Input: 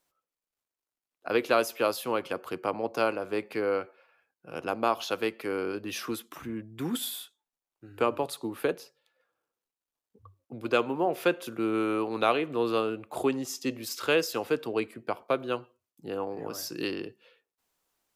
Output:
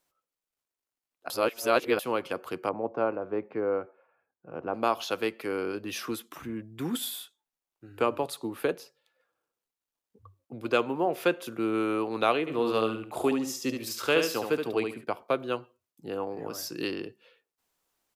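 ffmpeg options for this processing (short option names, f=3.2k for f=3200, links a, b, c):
-filter_complex "[0:a]asettb=1/sr,asplit=3[a][b][c];[a]atrim=end=2.694[d];[b]atrim=start=2.69:end=4.74,asetpts=PTS-STARTPTS,afade=t=in:d=0.004:c=qsin,afade=t=out:st=2.046:d=0.004:c=qsin,lowpass=1.2k[e];[c]atrim=start=4.736[f];[d][e]acrossfade=d=0.004:c1=hsin:c2=qsin[g];[g][f]acrossfade=d=0.004:c1=qsin:c2=hsin,asplit=3[h][i][j];[h]afade=t=out:st=12.46:d=0.02[k];[i]aecho=1:1:72|144|216:0.531|0.133|0.0332,afade=t=in:st=12.46:d=0.02,afade=t=out:st=15.03:d=0.02[l];[j]afade=t=in:st=15.03:d=0.02[m];[k][l][m]amix=inputs=3:normalize=0,asplit=3[n][o][p];[n]atrim=end=1.302[q];[o]atrim=start=1.298:end=1.992,asetpts=PTS-STARTPTS,areverse[r];[p]atrim=start=1.988[s];[q][r]acrossfade=d=0.004:c1=hsin:c2=hsin[t];[t][s]acrossfade=d=0.004:c1=hsin:c2=hsin"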